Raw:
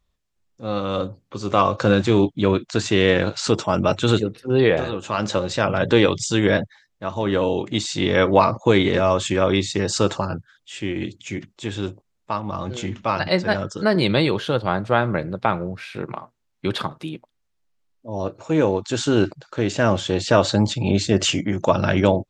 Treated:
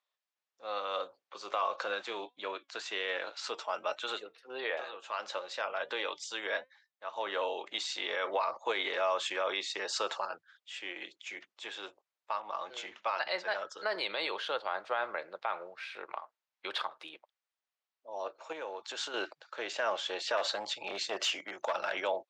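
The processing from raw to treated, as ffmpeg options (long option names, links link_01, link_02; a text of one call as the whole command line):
ffmpeg -i in.wav -filter_complex "[0:a]asettb=1/sr,asplit=3[link_01][link_02][link_03];[link_01]atrim=end=1.844[link_04];[link_02]atrim=start=1.84:end=7.14,asetpts=PTS-STARTPTS,afade=type=in:duration=0.004:curve=qsin,afade=type=out:start_time=5.296:duration=0.004:curve=qsin,flanger=delay=3.2:depth=1.3:regen=87:speed=1.4:shape=triangular[link_05];[link_03]atrim=start=7.136[link_06];[link_04][link_05]acrossfade=duration=0.004:curve1=hsin:curve2=qsin[link_07];[link_07][link_06]acrossfade=duration=0.004:curve1=qsin:curve2=hsin,asettb=1/sr,asplit=3[link_08][link_09][link_10];[link_08]atrim=end=18.524[link_11];[link_09]atrim=start=18.52:end=19.14,asetpts=PTS-STARTPTS,afade=type=in:duration=0.004:curve=qsin,afade=type=out:start_time=0.616:duration=0.004:curve=qsin,acompressor=threshold=-21dB:ratio=6:attack=3.2:release=140:knee=1:detection=peak[link_12];[link_10]atrim=start=19.136[link_13];[link_11][link_12]acrossfade=duration=0.004:curve1=hsin:curve2=qsin[link_14];[link_14][link_13]acrossfade=duration=0.004:curve1=qsin:curve2=hsin,asettb=1/sr,asplit=3[link_15][link_16][link_17];[link_15]atrim=end=20.374[link_18];[link_16]atrim=start=20.37:end=21.93,asetpts=PTS-STARTPTS,afade=type=in:duration=0.004:curve=qsin,afade=type=out:start_time=1.556:duration=0.004:curve=qsin,aeval=exprs='clip(val(0),-1,0.158)':channel_layout=same[link_19];[link_17]atrim=start=21.926[link_20];[link_18][link_19]acrossfade=duration=0.004:curve1=hsin:curve2=qsin[link_21];[link_21][link_20]acrossfade=duration=0.004:curve1=qsin:curve2=hsin,highpass=380,acrossover=split=530 5500:gain=0.0708 1 0.224[link_22][link_23][link_24];[link_22][link_23][link_24]amix=inputs=3:normalize=0,alimiter=limit=-15.5dB:level=0:latency=1:release=46,volume=-6dB" out.wav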